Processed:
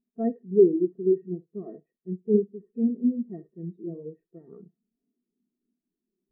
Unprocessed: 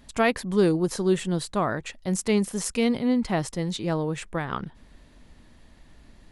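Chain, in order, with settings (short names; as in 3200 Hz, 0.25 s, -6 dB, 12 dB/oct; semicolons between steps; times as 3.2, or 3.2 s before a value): per-bin compression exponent 0.4; on a send: flutter echo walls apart 11.3 m, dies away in 0.53 s; on the sum: spectral expander 4:1; gain -4 dB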